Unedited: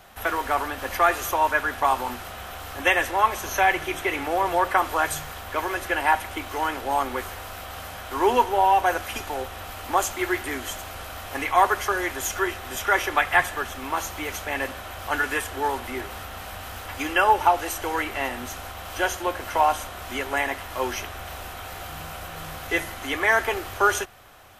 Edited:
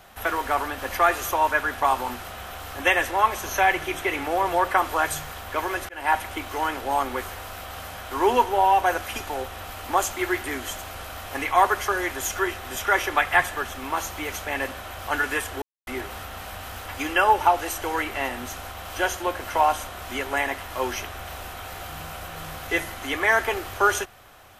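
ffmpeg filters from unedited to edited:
-filter_complex "[0:a]asplit=4[a][b][c][d];[a]atrim=end=5.89,asetpts=PTS-STARTPTS,afade=t=out:st=5.886:d=0.004:c=hsin[e];[b]atrim=start=5.89:end=15.62,asetpts=PTS-STARTPTS,afade=t=in:d=0.26,afade=t=out:st=9.726:d=0.004:c=hsin[f];[c]atrim=start=15.62:end=15.87,asetpts=PTS-STARTPTS,volume=0[g];[d]atrim=start=15.87,asetpts=PTS-STARTPTS,afade=t=in:d=0.004:c=hsin[h];[e][f][g][h]concat=n=4:v=0:a=1"

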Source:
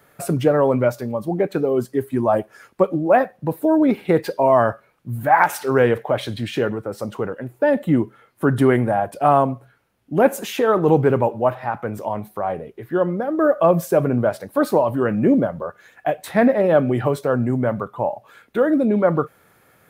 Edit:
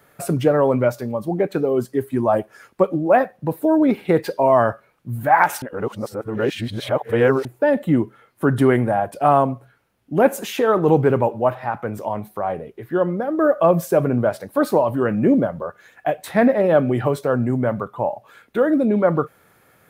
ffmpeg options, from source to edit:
-filter_complex "[0:a]asplit=3[a][b][c];[a]atrim=end=5.622[d];[b]atrim=start=5.618:end=7.452,asetpts=PTS-STARTPTS,areverse[e];[c]atrim=start=7.448[f];[d][e]acrossfade=d=0.004:c1=hsin:c2=hsin[g];[g][f]acrossfade=d=0.004:c1=hsin:c2=hsin"

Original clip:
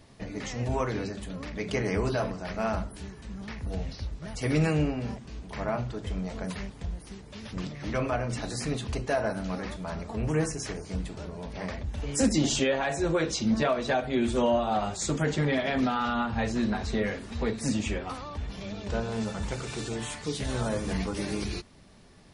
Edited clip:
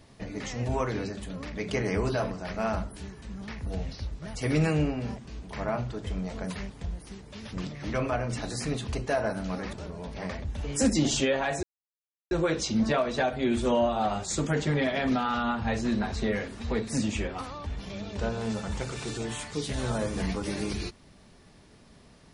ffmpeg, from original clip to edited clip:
-filter_complex "[0:a]asplit=3[a][b][c];[a]atrim=end=9.732[d];[b]atrim=start=11.118:end=13.02,asetpts=PTS-STARTPTS,afade=t=out:st=1.898:d=0.004:c=hsin,apad=pad_dur=0.68[e];[c]atrim=start=13.02,asetpts=PTS-STARTPTS,afade=t=in:d=0.004:c=hsin[f];[e][f]concat=n=2:v=0:a=1[g];[d][g]acrossfade=d=0.004:c1=hsin:c2=hsin"

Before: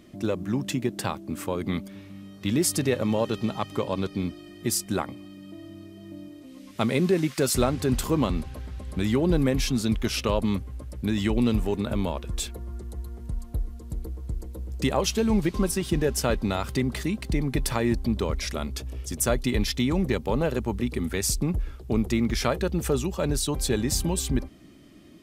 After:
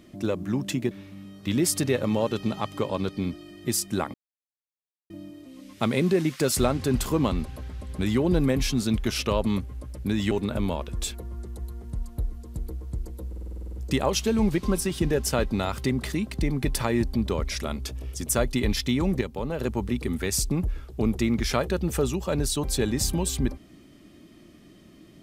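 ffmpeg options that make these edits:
-filter_complex "[0:a]asplit=16[a][b][c][d][e][f][g][h][i][j][k][l][m][n][o][p];[a]atrim=end=0.912[q];[b]atrim=start=1.888:end=5.12,asetpts=PTS-STARTPTS,afade=t=out:st=3.228:d=0.004:c=hsin[r];[c]atrim=start=5.12:end=6.08,asetpts=PTS-STARTPTS,volume=0[s];[d]atrim=start=6.08:end=11.292,asetpts=PTS-STARTPTS,afade=t=in:d=0.004:c=hsin[t];[e]atrim=start=11.668:end=14.692[u];[f]atrim=start=14.638:end=14.692[v];[g]atrim=start=14.638:end=14.692[w];[h]atrim=start=14.638:end=14.692[x];[i]atrim=start=14.638:end=14.692[y];[j]atrim=start=14.638:end=14.692[z];[k]atrim=start=14.638:end=14.692[aa];[l]atrim=start=14.638:end=14.692[ab];[m]atrim=start=14.638:end=14.692[ac];[n]atrim=start=14.638:end=20.122[ad];[o]atrim=start=20.118:end=20.502,asetpts=PTS-STARTPTS,volume=-5.5dB[ae];[p]atrim=start=20.498[af];[r][s][t]concat=n=3:v=0:a=1[ag];[q][ag]acrossfade=d=0.004:c1=hsin:c2=hsin[ah];[ah][u]acrossfade=d=0.004:c1=hsin:c2=hsin[ai];[ai][v]acrossfade=d=0.004:c1=hsin:c2=hsin[aj];[aj][w]acrossfade=d=0.004:c1=hsin:c2=hsin[ak];[ak][x]acrossfade=d=0.004:c1=hsin:c2=hsin[al];[al][y]acrossfade=d=0.004:c1=hsin:c2=hsin[am];[am][z]acrossfade=d=0.004:c1=hsin:c2=hsin[an];[an][aa]acrossfade=d=0.004:c1=hsin:c2=hsin[ao];[ao][ab]acrossfade=d=0.004:c1=hsin:c2=hsin[ap];[ap][ac]acrossfade=d=0.004:c1=hsin:c2=hsin[aq];[aq][ad]acrossfade=d=0.004:c1=hsin:c2=hsin[ar];[ar][ae]acrossfade=d=0.004:c1=hsin:c2=hsin[as];[as][af]acrossfade=d=0.004:c1=hsin:c2=hsin"

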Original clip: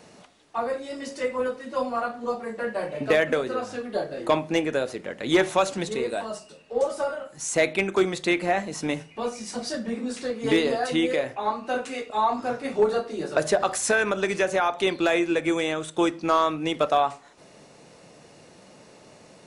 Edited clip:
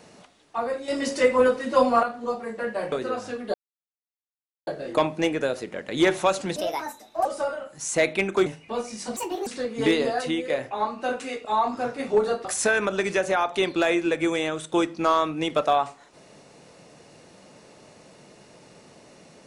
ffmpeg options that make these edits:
-filter_complex "[0:a]asplit=12[a][b][c][d][e][f][g][h][i][j][k][l];[a]atrim=end=0.882[m];[b]atrim=start=0.878:end=2.032,asetpts=PTS-STARTPTS,volume=8dB[n];[c]atrim=start=2.028:end=2.922[o];[d]atrim=start=3.368:end=3.99,asetpts=PTS-STARTPTS,afade=t=out:st=0.618:d=0.004:c=hsin,apad=pad_dur=1.13[p];[e]atrim=start=3.99:end=5.884,asetpts=PTS-STARTPTS,afade=t=in:d=0.004:c=hsin[q];[f]atrim=start=5.88:end=6.85,asetpts=PTS-STARTPTS,asetrate=61740,aresample=44100,atrim=end_sample=30555,asetpts=PTS-STARTPTS[r];[g]atrim=start=6.846:end=8.062[s];[h]atrim=start=8.938:end=9.644[t];[i]atrim=start=9.64:end=10.12,asetpts=PTS-STARTPTS,asetrate=69678,aresample=44100,atrim=end_sample=13397,asetpts=PTS-STARTPTS[u];[j]atrim=start=10.116:end=11.15,asetpts=PTS-STARTPTS,afade=t=out:st=0.714:d=0.32:silence=0.354813[v];[k]atrim=start=11.15:end=13.102,asetpts=PTS-STARTPTS,afade=t=in:d=0.004:c=hsin:silence=0.354813[w];[l]atrim=start=13.688[x];[m][n]acrossfade=d=0.004:c1=hsin:c2=hsin[y];[y][o]acrossfade=d=0.004:c1=hsin:c2=hsin[z];[p][q]concat=n=2:v=0:a=1[aa];[z][aa]acrossfade=d=0.004:c1=hsin:c2=hsin[ab];[ab][r]acrossfade=d=0.004:c1=hsin:c2=hsin[ac];[ac][s]acrossfade=d=0.004:c1=hsin:c2=hsin[ad];[ad][t]acrossfade=d=0.004:c1=hsin:c2=hsin[ae];[ae][u]acrossfade=d=0.004:c1=hsin:c2=hsin[af];[v][w]concat=n=2:v=0:a=1[ag];[af][ag]acrossfade=d=0.004:c1=hsin:c2=hsin[ah];[ah][x]acrossfade=d=0.004:c1=hsin:c2=hsin"

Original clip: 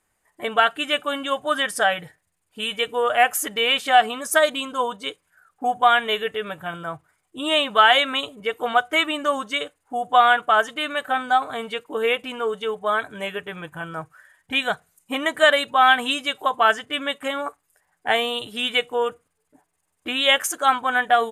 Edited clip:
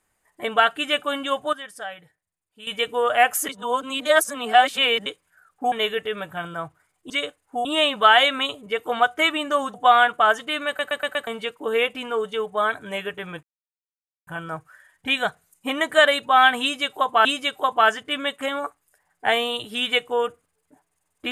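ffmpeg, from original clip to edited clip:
-filter_complex "[0:a]asplit=16[a][b][c][d][e][f][g][h][i][j][k][l][m][n][o][p];[a]atrim=end=1.53,asetpts=PTS-STARTPTS,afade=t=out:st=1.31:d=0.22:c=log:silence=0.199526[q];[b]atrim=start=1.53:end=2.67,asetpts=PTS-STARTPTS,volume=-14dB[r];[c]atrim=start=2.67:end=3.492,asetpts=PTS-STARTPTS,afade=t=in:d=0.22:c=log:silence=0.199526[s];[d]atrim=start=3.488:end=5.062,asetpts=PTS-STARTPTS,areverse[t];[e]atrim=start=5.058:end=5.722[u];[f]atrim=start=6.008:end=7.392[v];[g]atrim=start=9.478:end=10.032[w];[h]atrim=start=7.388:end=9.482[x];[i]atrim=start=10.028:end=11.082[y];[j]atrim=start=10.958:end=11.082[z];[k]atrim=start=10.958:end=11.082[aa];[l]atrim=start=10.958:end=11.082[ab];[m]atrim=start=10.958:end=11.082[ac];[n]atrim=start=11.558:end=13.72,asetpts=PTS-STARTPTS,afade=t=out:st=2.158:d=0.004:c=hsin,apad=pad_dur=0.84[ad];[o]atrim=start=13.72:end=16.702,asetpts=PTS-STARTPTS,afade=t=in:d=0.004:c=hsin[ae];[p]atrim=start=16.068[af];[q][r][s]concat=n=3:v=0:a=1[ag];[ag][t]acrossfade=d=0.004:c1=hsin:c2=hsin[ah];[ah][u]acrossfade=d=0.004:c1=hsin:c2=hsin[ai];[ai][v]acrossfade=d=0.004:c1=hsin:c2=hsin[aj];[aj][w]acrossfade=d=0.004:c1=hsin:c2=hsin[ak];[ak][x]acrossfade=d=0.004:c1=hsin:c2=hsin[al];[al][y]acrossfade=d=0.004:c1=hsin:c2=hsin[am];[am][z]acrossfade=d=0.004:c1=hsin:c2=hsin[an];[an][aa]acrossfade=d=0.004:c1=hsin:c2=hsin[ao];[ao][ab]acrossfade=d=0.004:c1=hsin:c2=hsin[ap];[ap][ac]acrossfade=d=0.004:c1=hsin:c2=hsin[aq];[ad][ae]concat=n=2:v=0:a=1[ar];[aq][ar]acrossfade=d=0.004:c1=hsin:c2=hsin[as];[as][af]acrossfade=d=0.004:c1=hsin:c2=hsin"

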